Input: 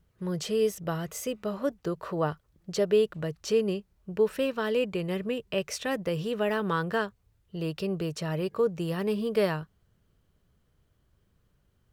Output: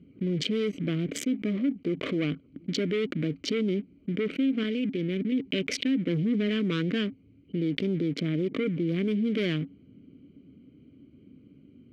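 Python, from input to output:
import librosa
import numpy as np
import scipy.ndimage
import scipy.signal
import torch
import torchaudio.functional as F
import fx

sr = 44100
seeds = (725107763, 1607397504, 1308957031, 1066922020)

y = fx.wiener(x, sr, points=25)
y = fx.level_steps(y, sr, step_db=19, at=(4.63, 5.32))
y = fx.low_shelf(y, sr, hz=390.0, db=10.5, at=(6.07, 6.48), fade=0.02)
y = scipy.signal.sosfilt(scipy.signal.butter(2, 73.0, 'highpass', fs=sr, output='sos'), y)
y = fx.high_shelf(y, sr, hz=3400.0, db=-8.5, at=(8.12, 8.92))
y = fx.leveller(y, sr, passes=3)
y = fx.vowel_filter(y, sr, vowel='i')
y = fx.env_flatten(y, sr, amount_pct=70)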